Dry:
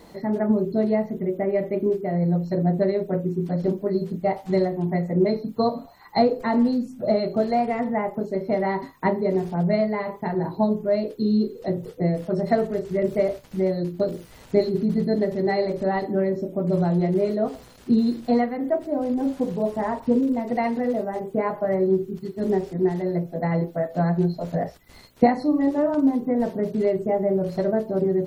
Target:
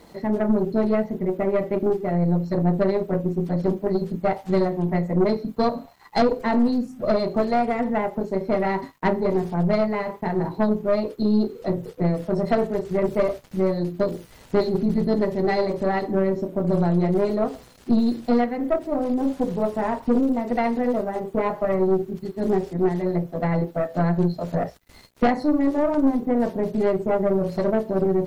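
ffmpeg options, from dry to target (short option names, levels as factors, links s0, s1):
-af "aeval=exprs='(tanh(6.31*val(0)+0.5)-tanh(0.5))/6.31':c=same,aeval=exprs='sgn(val(0))*max(abs(val(0))-0.00112,0)':c=same,volume=1.5"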